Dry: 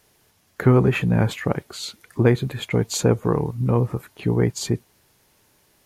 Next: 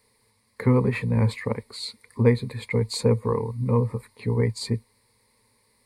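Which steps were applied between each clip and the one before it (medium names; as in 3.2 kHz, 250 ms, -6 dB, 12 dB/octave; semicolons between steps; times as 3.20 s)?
rippled EQ curve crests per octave 0.94, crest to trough 15 dB; trim -7 dB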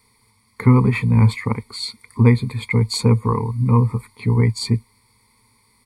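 comb 0.9 ms, depth 69%; trim +4 dB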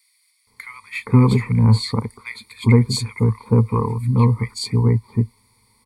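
bands offset in time highs, lows 470 ms, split 1.7 kHz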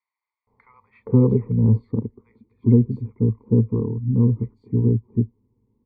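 low-pass sweep 710 Hz -> 340 Hz, 0.48–1.97 s; trim -4 dB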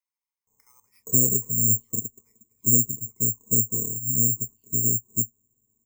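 careless resampling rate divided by 6×, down none, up zero stuff; trim -12.5 dB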